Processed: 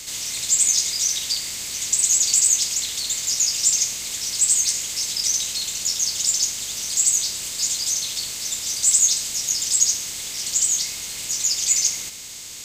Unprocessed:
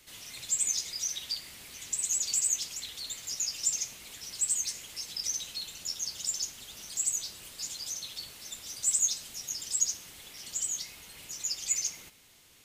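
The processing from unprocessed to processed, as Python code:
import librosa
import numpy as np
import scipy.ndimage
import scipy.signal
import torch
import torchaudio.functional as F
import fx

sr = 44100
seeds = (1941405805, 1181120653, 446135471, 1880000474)

y = fx.bin_compress(x, sr, power=0.6)
y = y * 10.0 ** (7.5 / 20.0)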